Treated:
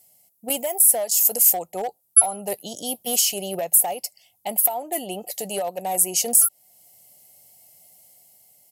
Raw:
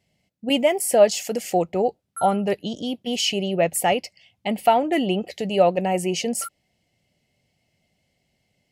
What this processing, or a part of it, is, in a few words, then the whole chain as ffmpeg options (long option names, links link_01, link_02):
FM broadcast chain: -filter_complex "[0:a]highpass=frequency=80:width=0.5412,highpass=frequency=80:width=1.3066,firequalizer=gain_entry='entry(260,0);entry(750,13);entry(1500,0);entry(2400,-4);entry(5900,-1);entry(9500,3)':delay=0.05:min_phase=1,dynaudnorm=framelen=110:gausssize=13:maxgain=3dB,acrossover=split=820|4600[link_01][link_02][link_03];[link_01]acompressor=threshold=-14dB:ratio=4[link_04];[link_02]acompressor=threshold=-21dB:ratio=4[link_05];[link_03]acompressor=threshold=-31dB:ratio=4[link_06];[link_04][link_05][link_06]amix=inputs=3:normalize=0,aemphasis=mode=production:type=75fm,alimiter=limit=-14.5dB:level=0:latency=1:release=457,asoftclip=type=hard:threshold=-17dB,lowpass=frequency=15000:width=0.5412,lowpass=frequency=15000:width=1.3066,aemphasis=mode=production:type=75fm,volume=-3dB"